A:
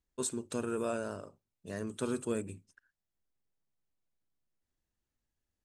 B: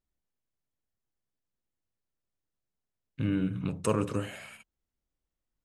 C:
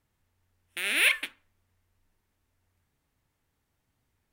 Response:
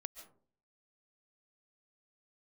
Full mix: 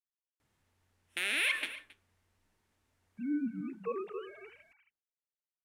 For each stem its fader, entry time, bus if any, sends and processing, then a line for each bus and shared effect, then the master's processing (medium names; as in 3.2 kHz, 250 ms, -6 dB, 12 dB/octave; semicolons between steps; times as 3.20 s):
mute
-6.5 dB, 0.00 s, no send, echo send -11 dB, formants replaced by sine waves
0.0 dB, 0.40 s, send -7.5 dB, echo send -23.5 dB, low-pass 11 kHz 12 dB/octave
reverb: on, RT60 0.50 s, pre-delay 100 ms
echo: delay 270 ms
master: bass shelf 76 Hz -10 dB; peak limiter -20.5 dBFS, peak gain reduction 11.5 dB